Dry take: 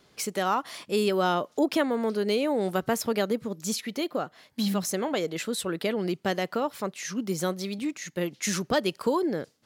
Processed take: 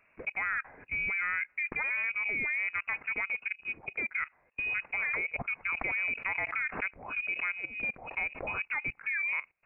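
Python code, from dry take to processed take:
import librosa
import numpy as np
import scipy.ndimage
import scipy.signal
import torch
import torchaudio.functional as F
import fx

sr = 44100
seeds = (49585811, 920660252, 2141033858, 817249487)

y = fx.peak_eq(x, sr, hz=150.0, db=-5.5, octaves=2.2)
y = fx.level_steps(y, sr, step_db=17)
y = fx.freq_invert(y, sr, carrier_hz=2700)
y = fx.pre_swell(y, sr, db_per_s=97.0, at=(5.75, 8.49))
y = F.gain(torch.from_numpy(y), 2.5).numpy()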